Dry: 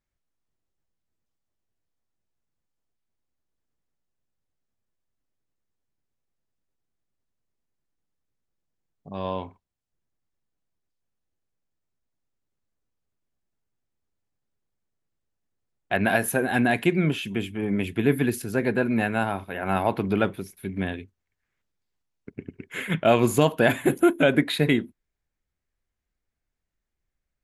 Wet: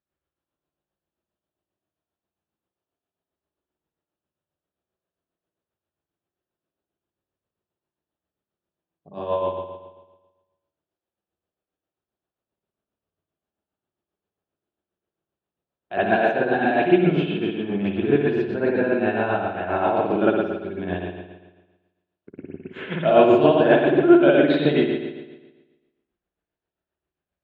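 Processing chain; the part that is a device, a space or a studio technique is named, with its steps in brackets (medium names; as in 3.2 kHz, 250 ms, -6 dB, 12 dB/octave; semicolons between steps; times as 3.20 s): combo amplifier with spring reverb and tremolo (spring tank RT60 1.2 s, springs 55 ms, chirp 35 ms, DRR -8 dB; tremolo 7.5 Hz, depth 50%; cabinet simulation 91–4000 Hz, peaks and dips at 120 Hz -9 dB, 240 Hz -4 dB, 350 Hz +5 dB, 630 Hz +4 dB, 2.1 kHz -9 dB); trim -3.5 dB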